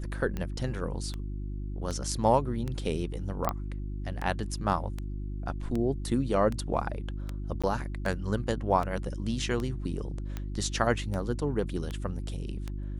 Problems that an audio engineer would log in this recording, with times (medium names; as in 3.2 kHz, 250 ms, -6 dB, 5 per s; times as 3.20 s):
hum 50 Hz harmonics 7 -35 dBFS
tick 78 rpm -21 dBFS
3.49 s: pop -14 dBFS
7.62–7.64 s: dropout 16 ms